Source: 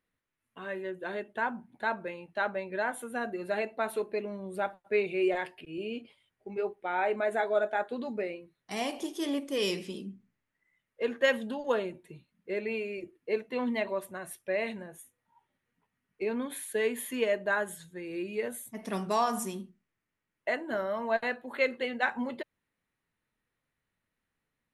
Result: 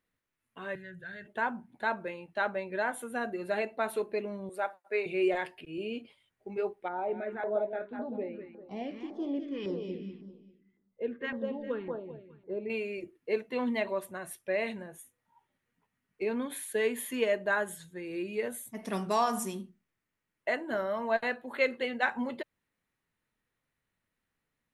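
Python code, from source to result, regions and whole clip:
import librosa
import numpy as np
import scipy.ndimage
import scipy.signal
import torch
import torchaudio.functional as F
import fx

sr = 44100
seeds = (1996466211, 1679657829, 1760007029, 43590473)

y = fx.chain(x, sr, fx.curve_eq(hz=(110.0, 150.0, 260.0, 600.0, 1100.0, 1600.0, 2500.0, 4200.0, 9100.0), db=(0, 8, -24, -18, -25, -1, -14, -7, -14)),
    fx.env_flatten(amount_pct=50), at=(0.75, 1.27))
y = fx.chain(y, sr, fx.highpass(hz=470.0, slope=12),
    fx.peak_eq(hz=3200.0, db=-6.5, octaves=0.49), at=(4.49, 5.06))
y = fx.chain(y, sr, fx.echo_feedback(ms=199, feedback_pct=35, wet_db=-7.0),
    fx.filter_lfo_notch(shape='saw_down', hz=1.8, low_hz=480.0, high_hz=3000.0, q=0.79),
    fx.spacing_loss(db_at_10k=44), at=(6.88, 12.7))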